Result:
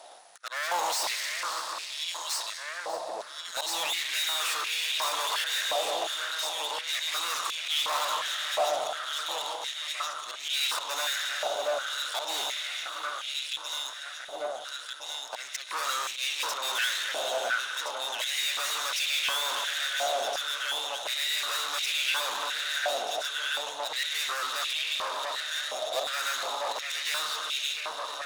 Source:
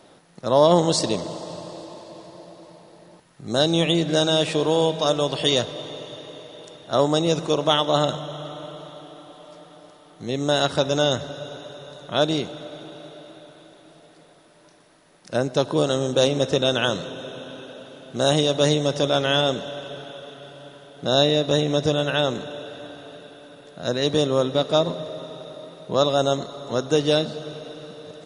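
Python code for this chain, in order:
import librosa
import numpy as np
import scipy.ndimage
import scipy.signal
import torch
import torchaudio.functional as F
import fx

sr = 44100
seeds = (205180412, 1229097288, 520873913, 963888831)

p1 = fx.peak_eq(x, sr, hz=9000.0, db=11.5, octaves=2.7)
p2 = fx.auto_swell(p1, sr, attack_ms=269.0)
p3 = fx.leveller(p2, sr, passes=1)
p4 = fx.transient(p3, sr, attack_db=8, sustain_db=3)
p5 = p4 + fx.echo_alternate(p4, sr, ms=685, hz=1700.0, feedback_pct=80, wet_db=-11.0, dry=0)
p6 = fx.tube_stage(p5, sr, drive_db=29.0, bias=0.6)
p7 = p6 + 10.0 ** (-16.5 / 20.0) * np.pad(p6, (int(590 * sr / 1000.0), 0))[:len(p6)]
y = fx.filter_held_highpass(p7, sr, hz=2.8, low_hz=720.0, high_hz=2400.0)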